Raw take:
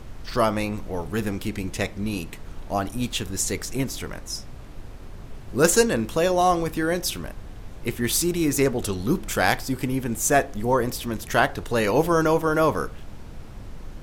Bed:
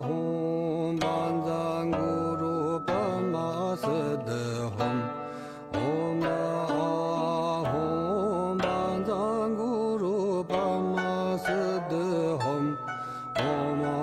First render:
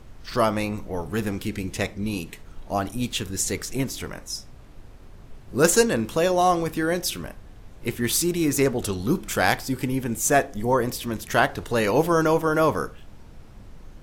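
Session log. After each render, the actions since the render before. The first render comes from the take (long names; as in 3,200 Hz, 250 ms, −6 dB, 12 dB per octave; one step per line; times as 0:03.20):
noise reduction from a noise print 6 dB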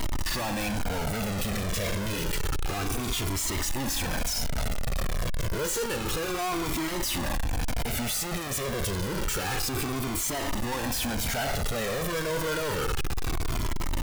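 sign of each sample alone
flanger whose copies keep moving one way falling 0.29 Hz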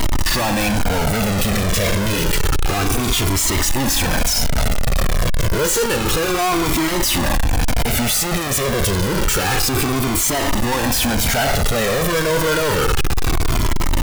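level +11.5 dB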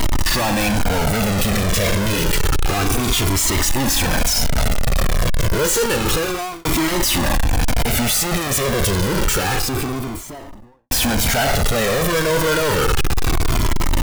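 0:06.14–0:06.65: fade out
0:09.19–0:10.91: fade out and dull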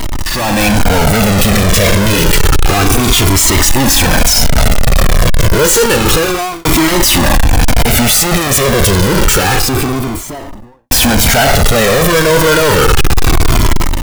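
automatic gain control gain up to 9.5 dB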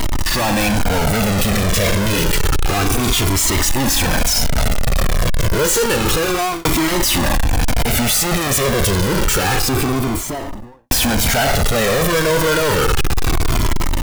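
downward compressor 5 to 1, threshold −14 dBFS, peak gain reduction 7.5 dB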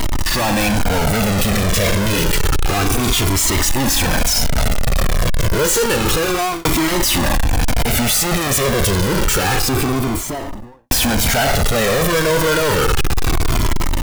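no processing that can be heard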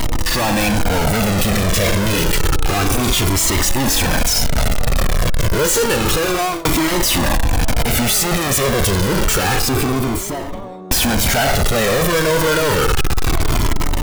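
mix in bed −5.5 dB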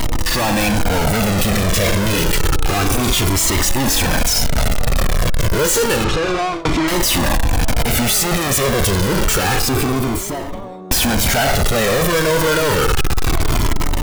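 0:06.04–0:06.88: high-frequency loss of the air 110 metres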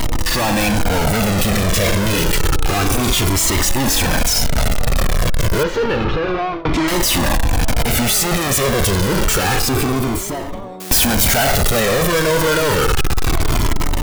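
0:05.63–0:06.74: high-frequency loss of the air 280 metres
0:10.80–0:11.80: spike at every zero crossing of −15 dBFS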